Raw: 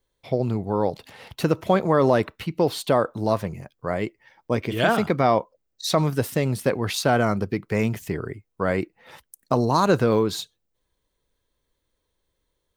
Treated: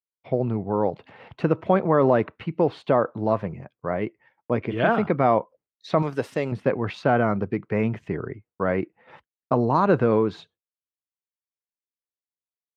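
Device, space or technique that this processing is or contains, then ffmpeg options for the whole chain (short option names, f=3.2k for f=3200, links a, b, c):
hearing-loss simulation: -filter_complex "[0:a]asettb=1/sr,asplit=3[a][b][c];[a]atrim=end=6.024[d];[b]atrim=start=6.02:end=6.52,asetpts=PTS-STARTPTS,afade=t=in:d=0.004:c=qsin,afade=t=out:st=0.496:d=0.004:c=qsin,bass=f=250:g=-9,treble=f=4k:g=15[e];[c]atrim=start=6.516[f];[d][e]acrossfade=d=0.004:c1=hsin:c2=qsin[g];[g][f]acrossfade=d=0.004:c1=qsin:c2=hsin,lowpass=1.8k,agate=range=-33dB:threshold=-47dB:ratio=3:detection=peak,highpass=94,equalizer=f=2.6k:w=2.4:g=3"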